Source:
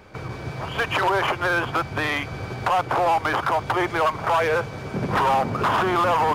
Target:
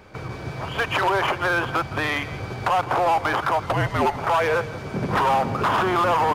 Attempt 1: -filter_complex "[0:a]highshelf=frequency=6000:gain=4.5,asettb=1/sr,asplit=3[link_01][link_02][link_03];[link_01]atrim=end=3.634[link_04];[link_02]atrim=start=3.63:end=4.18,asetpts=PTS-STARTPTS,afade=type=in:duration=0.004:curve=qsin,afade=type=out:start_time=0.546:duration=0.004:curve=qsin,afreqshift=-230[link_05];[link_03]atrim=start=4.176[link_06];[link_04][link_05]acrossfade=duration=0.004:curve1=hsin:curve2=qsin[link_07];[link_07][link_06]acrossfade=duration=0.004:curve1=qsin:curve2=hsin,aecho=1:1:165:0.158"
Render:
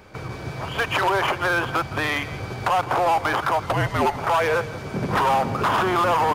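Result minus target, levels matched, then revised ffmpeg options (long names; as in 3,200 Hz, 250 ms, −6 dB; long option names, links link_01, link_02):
8,000 Hz band +2.5 dB
-filter_complex "[0:a]asettb=1/sr,asplit=3[link_01][link_02][link_03];[link_01]atrim=end=3.634[link_04];[link_02]atrim=start=3.63:end=4.18,asetpts=PTS-STARTPTS,afade=type=in:duration=0.004:curve=qsin,afade=type=out:start_time=0.546:duration=0.004:curve=qsin,afreqshift=-230[link_05];[link_03]atrim=start=4.176[link_06];[link_04][link_05]acrossfade=duration=0.004:curve1=hsin:curve2=qsin[link_07];[link_07][link_06]acrossfade=duration=0.004:curve1=qsin:curve2=hsin,aecho=1:1:165:0.158"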